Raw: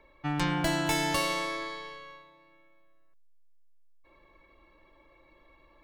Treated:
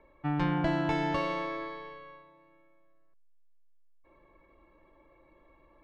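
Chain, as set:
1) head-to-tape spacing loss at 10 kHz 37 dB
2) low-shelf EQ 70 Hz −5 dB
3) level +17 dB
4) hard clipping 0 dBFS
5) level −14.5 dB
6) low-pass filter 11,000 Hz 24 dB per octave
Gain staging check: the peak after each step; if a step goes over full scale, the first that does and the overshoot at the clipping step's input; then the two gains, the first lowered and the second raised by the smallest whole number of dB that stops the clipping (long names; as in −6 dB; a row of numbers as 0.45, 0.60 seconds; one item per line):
−18.5, −19.0, −2.0, −2.0, −16.5, −16.5 dBFS
no step passes full scale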